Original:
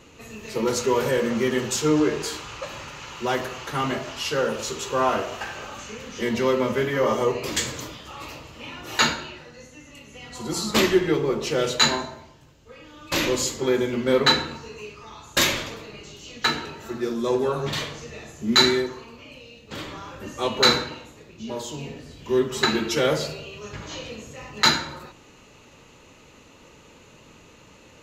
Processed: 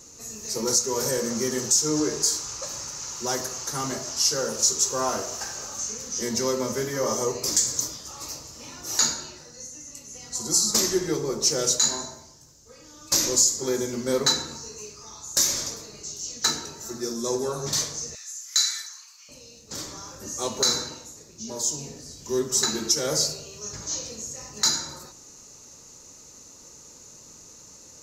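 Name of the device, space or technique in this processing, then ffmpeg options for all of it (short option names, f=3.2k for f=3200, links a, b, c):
over-bright horn tweeter: -filter_complex "[0:a]asettb=1/sr,asplit=3[a][b][c];[a]atrim=end=18.154[d];[b]atrim=start=18.15:end=19.29,asetpts=PTS-STARTPTS,afade=t=in:d=0.004:c=qsin,afade=t=out:st=1.136:d=0.004:c=qsin,highpass=f=1.4k:w=0.5412,highpass=f=1.4k:w=1.3066[e];[c]atrim=start=19.286[f];[d][e]acrossfade=d=0.004:c1=hsin:c2=qsin[g];[g][f]acrossfade=d=0.004:c1=qsin:c2=hsin,highshelf=f=4.1k:t=q:w=3:g=12.5,alimiter=limit=-4.5dB:level=0:latency=1:release=234,volume=-4.5dB"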